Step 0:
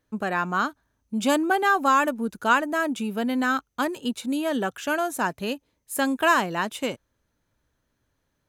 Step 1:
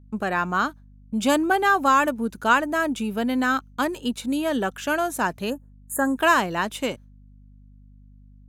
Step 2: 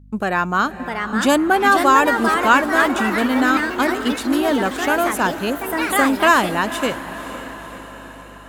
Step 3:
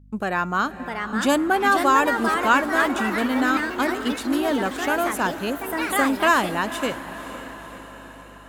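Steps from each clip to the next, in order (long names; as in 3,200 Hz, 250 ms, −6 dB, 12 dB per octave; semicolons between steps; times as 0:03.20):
noise gate with hold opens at −38 dBFS; mains hum 50 Hz, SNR 25 dB; gain on a spectral selection 0:05.50–0:06.17, 1,900–6,500 Hz −24 dB; level +1.5 dB
feedback delay with all-pass diffusion 517 ms, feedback 60%, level −13 dB; delay with pitch and tempo change per echo 690 ms, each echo +3 semitones, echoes 3, each echo −6 dB; level +4.5 dB
tuned comb filter 280 Hz, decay 1.1 s, mix 40%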